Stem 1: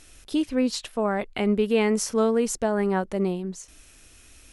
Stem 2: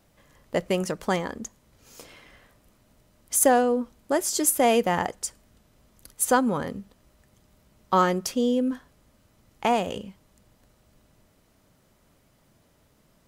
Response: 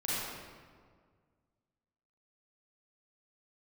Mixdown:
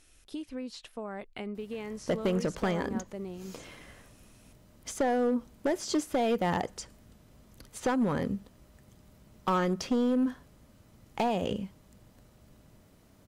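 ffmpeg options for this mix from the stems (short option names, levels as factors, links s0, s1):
-filter_complex "[0:a]acompressor=threshold=0.0631:ratio=6,volume=0.299[s0];[1:a]equalizer=f=140:w=0.35:g=5,acompressor=threshold=0.0708:ratio=4,adelay=1550,volume=1[s1];[s0][s1]amix=inputs=2:normalize=0,acrossover=split=5400[s2][s3];[s3]acompressor=threshold=0.002:ratio=4:attack=1:release=60[s4];[s2][s4]amix=inputs=2:normalize=0,asoftclip=type=hard:threshold=0.0794"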